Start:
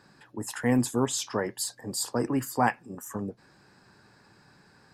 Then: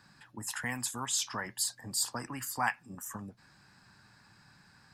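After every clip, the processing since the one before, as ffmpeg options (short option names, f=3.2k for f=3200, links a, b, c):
-filter_complex "[0:a]equalizer=f=430:w=1.1:g=-13.5,acrossover=split=750|6400[a][b][c];[a]acompressor=threshold=-40dB:ratio=6[d];[d][b][c]amix=inputs=3:normalize=0"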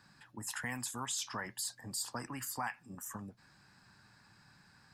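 -af "alimiter=level_in=0.5dB:limit=-24dB:level=0:latency=1:release=61,volume=-0.5dB,volume=-2.5dB"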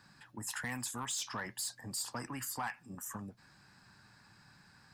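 -af "asoftclip=type=tanh:threshold=-31dB,volume=1.5dB"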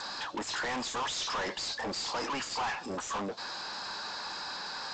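-filter_complex "[0:a]equalizer=f=125:t=o:w=1:g=-12,equalizer=f=500:t=o:w=1:g=9,equalizer=f=1k:t=o:w=1:g=6,equalizer=f=2k:t=o:w=1:g=-7,equalizer=f=4k:t=o:w=1:g=11,asplit=2[a][b];[b]highpass=f=720:p=1,volume=36dB,asoftclip=type=tanh:threshold=-21.5dB[c];[a][c]amix=inputs=2:normalize=0,lowpass=f=4.7k:p=1,volume=-6dB,volume=-5dB" -ar 16000 -c:a g722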